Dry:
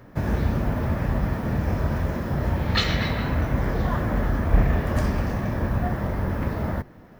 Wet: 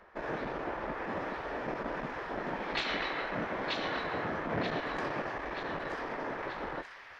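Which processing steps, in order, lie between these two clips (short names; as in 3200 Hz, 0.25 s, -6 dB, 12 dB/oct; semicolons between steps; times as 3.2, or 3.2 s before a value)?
LPF 3300 Hz 12 dB/oct; low shelf 150 Hz -4.5 dB; spectral gate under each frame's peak -10 dB weak; on a send: thin delay 0.932 s, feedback 51%, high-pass 2300 Hz, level -3 dB; on the sum: core saturation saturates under 760 Hz; gain -2 dB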